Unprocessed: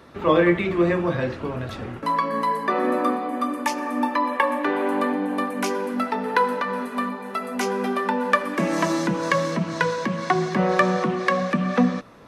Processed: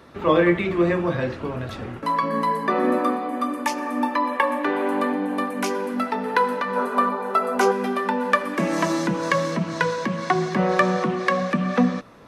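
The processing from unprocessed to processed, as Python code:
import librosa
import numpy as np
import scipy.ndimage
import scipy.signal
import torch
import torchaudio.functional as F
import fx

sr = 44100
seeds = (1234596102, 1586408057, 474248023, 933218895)

y = fx.low_shelf(x, sr, hz=160.0, db=11.0, at=(2.23, 2.99))
y = fx.spec_box(y, sr, start_s=6.76, length_s=0.96, low_hz=330.0, high_hz=1600.0, gain_db=8)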